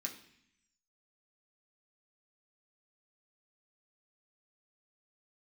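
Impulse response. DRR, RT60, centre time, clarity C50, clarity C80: -0.5 dB, 0.65 s, 16 ms, 10.0 dB, 13.5 dB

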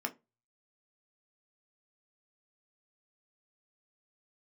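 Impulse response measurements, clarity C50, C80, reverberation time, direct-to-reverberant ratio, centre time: 19.5 dB, 29.0 dB, 0.25 s, 4.5 dB, 6 ms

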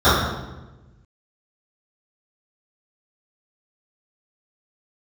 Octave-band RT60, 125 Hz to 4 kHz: 1.7 s, 1.4 s, 1.2 s, 1.0 s, 0.90 s, 0.80 s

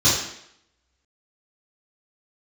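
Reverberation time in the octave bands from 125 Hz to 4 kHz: 0.55 s, 0.70 s, 0.75 s, 0.75 s, 0.75 s, 0.70 s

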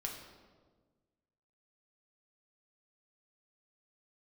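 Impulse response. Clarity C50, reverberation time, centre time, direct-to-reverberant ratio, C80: 5.0 dB, 1.5 s, 42 ms, -0.5 dB, 6.5 dB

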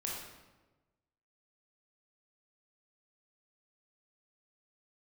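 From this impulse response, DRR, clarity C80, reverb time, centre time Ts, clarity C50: -3.5 dB, 3.5 dB, 1.2 s, 66 ms, 0.5 dB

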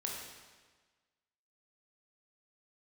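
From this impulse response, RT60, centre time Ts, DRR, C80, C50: 1.4 s, 70 ms, -2.0 dB, 3.0 dB, 1.5 dB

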